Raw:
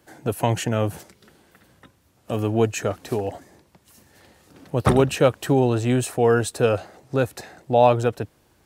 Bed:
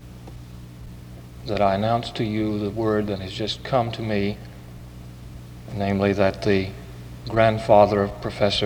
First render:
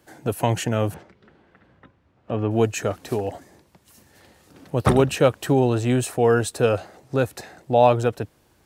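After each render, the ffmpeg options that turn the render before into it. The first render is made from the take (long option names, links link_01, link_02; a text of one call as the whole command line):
ffmpeg -i in.wav -filter_complex "[0:a]asettb=1/sr,asplit=3[link_01][link_02][link_03];[link_01]atrim=end=0.944[link_04];[link_02]atrim=start=0.94:end=2.51,asetpts=PTS-STARTPTS,afade=type=in:duration=0.004:curve=qsin,afade=type=out:start_time=1.566:duration=0.004:curve=qsin,lowpass=2300[link_05];[link_03]atrim=start=2.506[link_06];[link_04][link_05]acrossfade=duration=0.004:curve1=hsin:curve2=qsin[link_07];[link_07][link_06]acrossfade=duration=0.004:curve1=qsin:curve2=hsin" out.wav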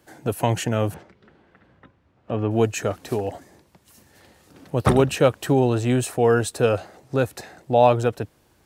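ffmpeg -i in.wav -af anull out.wav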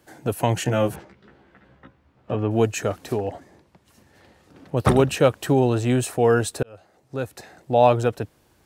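ffmpeg -i in.wav -filter_complex "[0:a]asettb=1/sr,asplit=3[link_01][link_02][link_03];[link_01]atrim=end=0.644[link_04];[link_02]atrim=start=0.64:end=2.35,asetpts=PTS-STARTPTS,afade=type=in:duration=0.004:curve=qsin,afade=type=out:start_time=1.706:duration=0.004:curve=qsin,asplit=2[link_05][link_06];[link_06]adelay=15,volume=-2dB[link_07];[link_05][link_07]amix=inputs=2:normalize=0,atrim=end_sample=75411[link_08];[link_03]atrim=start=2.346[link_09];[link_04][link_08]acrossfade=duration=0.004:curve1=hsin:curve2=qsin[link_10];[link_10][link_09]acrossfade=duration=0.004:curve1=qsin:curve2=hsin,asettb=1/sr,asplit=3[link_11][link_12][link_13];[link_11]atrim=end=3.124[link_14];[link_12]atrim=start=3.12:end=4.77,asetpts=PTS-STARTPTS,afade=type=in:duration=0.004:curve=qsin,afade=type=out:start_time=1.646:duration=0.004:curve=qsin,lowpass=frequency=3400:poles=1[link_15];[link_13]atrim=start=4.766[link_16];[link_14][link_15]acrossfade=duration=0.004:curve1=hsin:curve2=qsin[link_17];[link_17][link_16]acrossfade=duration=0.004:curve1=qsin:curve2=hsin,asplit=2[link_18][link_19];[link_18]atrim=end=6.63,asetpts=PTS-STARTPTS,afade=type=out:start_time=6.626:duration=0.004:curve=hsin[link_20];[link_19]atrim=start=6.63,asetpts=PTS-STARTPTS,afade=type=in:duration=1.24[link_21];[link_20][link_21]concat=n=2:v=0:a=1" out.wav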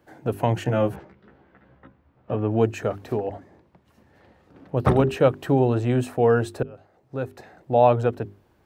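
ffmpeg -i in.wav -af "equalizer=frequency=9100:width=0.35:gain=-14.5,bandreject=frequency=50:width_type=h:width=6,bandreject=frequency=100:width_type=h:width=6,bandreject=frequency=150:width_type=h:width=6,bandreject=frequency=200:width_type=h:width=6,bandreject=frequency=250:width_type=h:width=6,bandreject=frequency=300:width_type=h:width=6,bandreject=frequency=350:width_type=h:width=6,bandreject=frequency=400:width_type=h:width=6" out.wav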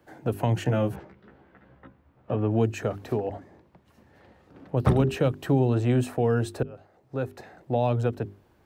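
ffmpeg -i in.wav -filter_complex "[0:a]acrossover=split=280|3000[link_01][link_02][link_03];[link_02]acompressor=threshold=-27dB:ratio=3[link_04];[link_01][link_04][link_03]amix=inputs=3:normalize=0" out.wav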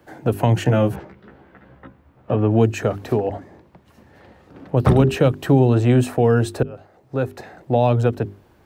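ffmpeg -i in.wav -af "volume=7.5dB,alimiter=limit=-3dB:level=0:latency=1" out.wav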